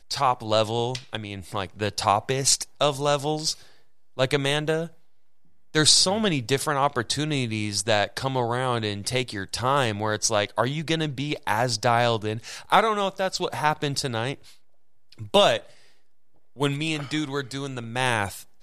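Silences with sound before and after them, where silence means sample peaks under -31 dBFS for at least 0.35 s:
3.53–4.19
4.86–5.75
14.34–15.21
15.58–16.6

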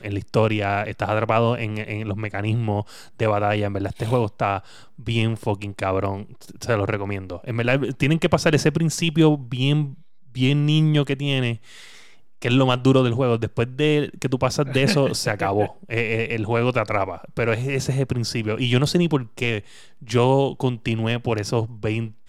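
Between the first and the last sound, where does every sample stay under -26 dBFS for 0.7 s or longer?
11.55–12.42

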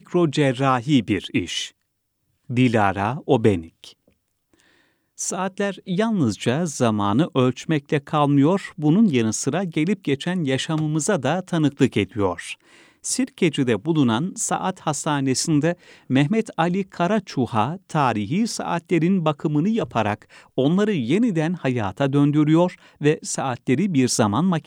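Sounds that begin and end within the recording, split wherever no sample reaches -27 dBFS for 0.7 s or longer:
2.5–3.84

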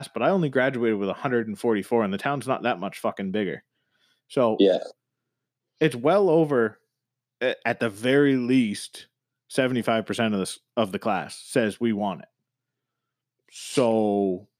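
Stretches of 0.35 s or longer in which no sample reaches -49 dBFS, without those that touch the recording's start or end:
3.6–4.3
4.92–5.81
6.75–7.41
9.06–9.5
12.25–13.49

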